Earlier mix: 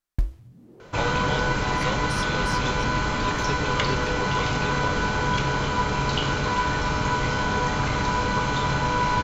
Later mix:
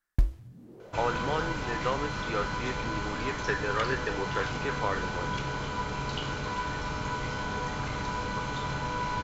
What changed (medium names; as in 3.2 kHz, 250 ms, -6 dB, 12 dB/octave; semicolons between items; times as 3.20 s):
speech: add resonant low-pass 1.7 kHz, resonance Q 5.1; second sound -9.0 dB